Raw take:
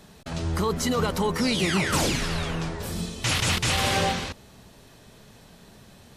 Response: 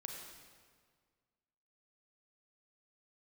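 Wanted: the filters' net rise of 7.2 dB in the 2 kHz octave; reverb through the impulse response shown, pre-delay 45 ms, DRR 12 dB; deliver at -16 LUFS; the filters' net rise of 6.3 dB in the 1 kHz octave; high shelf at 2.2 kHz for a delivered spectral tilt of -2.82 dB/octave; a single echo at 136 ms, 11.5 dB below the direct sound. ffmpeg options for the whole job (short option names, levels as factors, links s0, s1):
-filter_complex "[0:a]equalizer=f=1000:t=o:g=6,equalizer=f=2000:t=o:g=5,highshelf=f=2200:g=4,aecho=1:1:136:0.266,asplit=2[s0][s1];[1:a]atrim=start_sample=2205,adelay=45[s2];[s1][s2]afir=irnorm=-1:irlink=0,volume=0.335[s3];[s0][s3]amix=inputs=2:normalize=0,volume=1.68"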